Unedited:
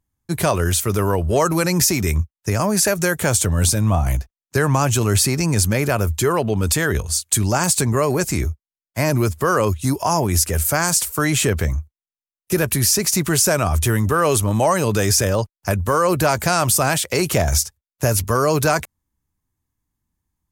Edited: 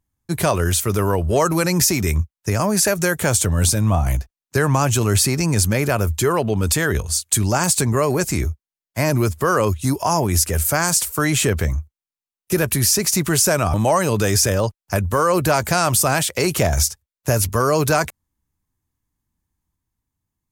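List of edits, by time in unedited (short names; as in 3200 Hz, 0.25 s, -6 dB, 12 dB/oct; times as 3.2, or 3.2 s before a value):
13.74–14.49 cut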